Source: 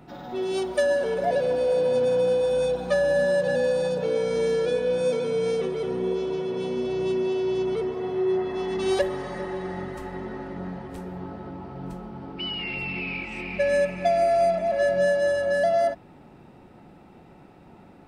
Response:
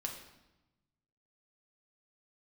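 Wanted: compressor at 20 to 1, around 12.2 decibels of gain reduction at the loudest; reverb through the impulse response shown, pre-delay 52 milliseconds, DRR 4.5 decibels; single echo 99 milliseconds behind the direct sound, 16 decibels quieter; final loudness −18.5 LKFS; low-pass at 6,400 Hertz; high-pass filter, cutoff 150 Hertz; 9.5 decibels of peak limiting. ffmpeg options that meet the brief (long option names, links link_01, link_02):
-filter_complex "[0:a]highpass=150,lowpass=6400,acompressor=threshold=-30dB:ratio=20,alimiter=level_in=5.5dB:limit=-24dB:level=0:latency=1,volume=-5.5dB,aecho=1:1:99:0.158,asplit=2[link_01][link_02];[1:a]atrim=start_sample=2205,adelay=52[link_03];[link_02][link_03]afir=irnorm=-1:irlink=0,volume=-4.5dB[link_04];[link_01][link_04]amix=inputs=2:normalize=0,volume=17.5dB"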